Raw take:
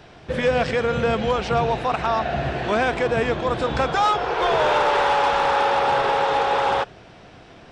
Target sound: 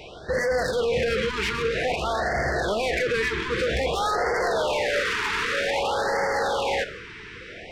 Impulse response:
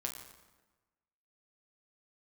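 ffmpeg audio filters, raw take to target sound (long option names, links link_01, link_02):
-filter_complex "[0:a]equalizer=frequency=125:width_type=o:width=1:gain=-4,equalizer=frequency=250:width_type=o:width=1:gain=-6,equalizer=frequency=500:width_type=o:width=1:gain=7,equalizer=frequency=1000:width_type=o:width=1:gain=-7,equalizer=frequency=2000:width_type=o:width=1:gain=12,alimiter=limit=-14dB:level=0:latency=1:release=27,asoftclip=type=tanh:threshold=-24.5dB,asplit=2[link_01][link_02];[1:a]atrim=start_sample=2205[link_03];[link_02][link_03]afir=irnorm=-1:irlink=0,volume=-3.5dB[link_04];[link_01][link_04]amix=inputs=2:normalize=0,afftfilt=real='re*(1-between(b*sr/1024,610*pow(3100/610,0.5+0.5*sin(2*PI*0.52*pts/sr))/1.41,610*pow(3100/610,0.5+0.5*sin(2*PI*0.52*pts/sr))*1.41))':imag='im*(1-between(b*sr/1024,610*pow(3100/610,0.5+0.5*sin(2*PI*0.52*pts/sr))/1.41,610*pow(3100/610,0.5+0.5*sin(2*PI*0.52*pts/sr))*1.41))':win_size=1024:overlap=0.75"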